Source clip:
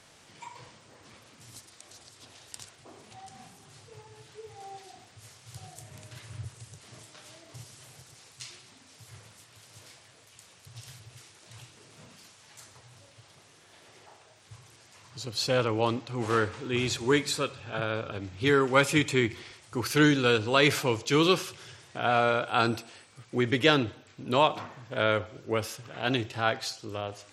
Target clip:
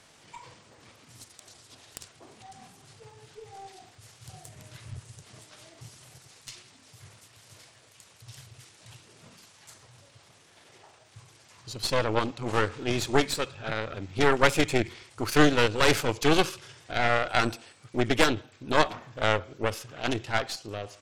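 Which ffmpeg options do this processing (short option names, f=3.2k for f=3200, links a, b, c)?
-af "atempo=1.3,aeval=exprs='0.531*(cos(1*acos(clip(val(0)/0.531,-1,1)))-cos(1*PI/2))+0.15*(cos(4*acos(clip(val(0)/0.531,-1,1)))-cos(4*PI/2))+0.0473*(cos(8*acos(clip(val(0)/0.531,-1,1)))-cos(8*PI/2))':c=same"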